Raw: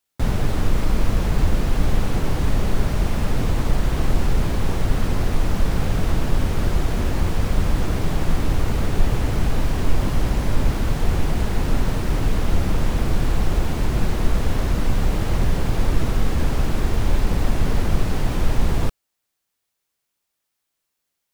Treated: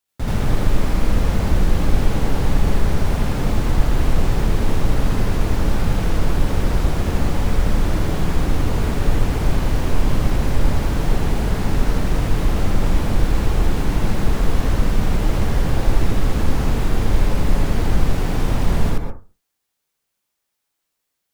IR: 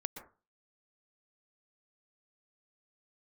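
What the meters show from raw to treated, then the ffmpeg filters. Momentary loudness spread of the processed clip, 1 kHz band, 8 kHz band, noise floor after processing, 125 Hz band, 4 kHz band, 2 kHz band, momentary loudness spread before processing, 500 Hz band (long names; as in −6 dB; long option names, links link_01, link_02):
1 LU, +2.0 dB, +1.0 dB, −77 dBFS, +2.0 dB, +1.5 dB, +2.0 dB, 1 LU, +2.5 dB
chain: -filter_complex "[0:a]asplit=2[link_01][link_02];[1:a]atrim=start_sample=2205,adelay=82[link_03];[link_02][link_03]afir=irnorm=-1:irlink=0,volume=4dB[link_04];[link_01][link_04]amix=inputs=2:normalize=0,volume=-3dB"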